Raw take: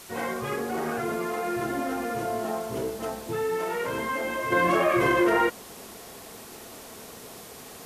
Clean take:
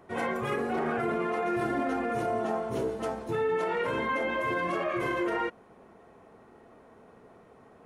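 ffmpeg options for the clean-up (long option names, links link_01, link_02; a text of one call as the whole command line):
ffmpeg -i in.wav -af "afwtdn=0.0056,asetnsamples=nb_out_samples=441:pad=0,asendcmd='4.52 volume volume -8dB',volume=0dB" out.wav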